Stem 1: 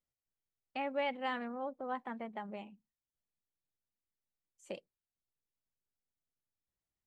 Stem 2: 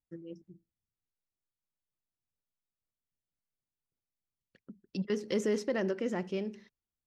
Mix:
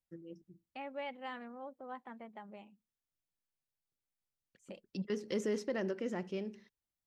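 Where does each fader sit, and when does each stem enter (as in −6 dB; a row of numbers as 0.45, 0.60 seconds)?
−7.0, −4.5 decibels; 0.00, 0.00 seconds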